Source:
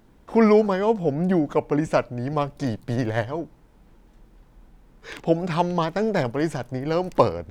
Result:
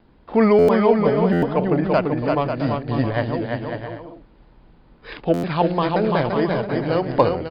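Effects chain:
Chebyshev low-pass filter 4,900 Hz, order 8
pitch vibrato 1.6 Hz 28 cents
harmonic generator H 5 −30 dB, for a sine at −2 dBFS
on a send: bouncing-ball delay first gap 340 ms, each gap 0.6×, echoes 5
on the sum: buffer that repeats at 0:00.58/0:01.32/0:05.33, samples 512, times 8
level +1 dB

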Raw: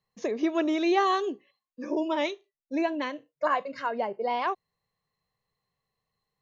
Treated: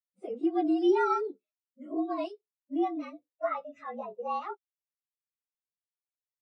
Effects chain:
partials spread apart or drawn together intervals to 111%
every bin expanded away from the loudest bin 1.5 to 1

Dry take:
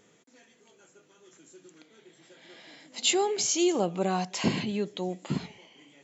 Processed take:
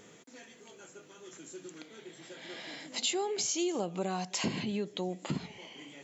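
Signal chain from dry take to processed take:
0:03.73–0:04.45: high-shelf EQ 4,600 Hz +5.5 dB
downward compressor 3 to 1, threshold −41 dBFS, peak gain reduction 15 dB
level +6.5 dB

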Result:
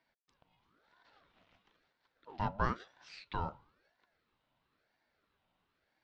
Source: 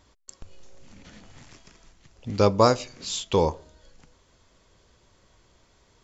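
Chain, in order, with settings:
loudspeaker in its box 310–3,100 Hz, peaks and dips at 420 Hz −5 dB, 810 Hz −4 dB, 1,300 Hz −9 dB, 1,900 Hz −8 dB
ring modulator whose carrier an LFO sweeps 810 Hz, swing 55%, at 1 Hz
level −8.5 dB

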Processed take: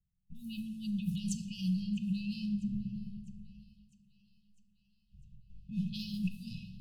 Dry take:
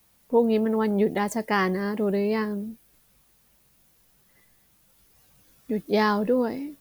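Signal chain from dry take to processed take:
0:02.43–0:06.17: feedback delay that plays each chunk backwards 106 ms, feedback 70%, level −10 dB
mains-hum notches 50/100/150/200/250/300/350 Hz
noise gate with hold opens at −47 dBFS
low-pass that shuts in the quiet parts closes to 720 Hz, open at −18 dBFS
low-shelf EQ 79 Hz +9.5 dB
brickwall limiter −30 dBFS, peak gain reduction 21.5 dB
linear-phase brick-wall band-stop 210–2,500 Hz
feedback echo with a high-pass in the loop 652 ms, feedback 63%, high-pass 220 Hz, level −23 dB
rectangular room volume 900 cubic metres, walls mixed, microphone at 0.6 metres
level +8 dB

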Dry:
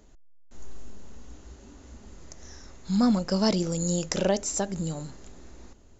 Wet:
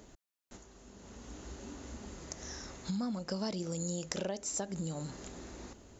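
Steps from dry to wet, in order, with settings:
downward compressor 8 to 1, threshold −38 dBFS, peak gain reduction 19 dB
high-pass filter 98 Hz 6 dB per octave
level +4.5 dB

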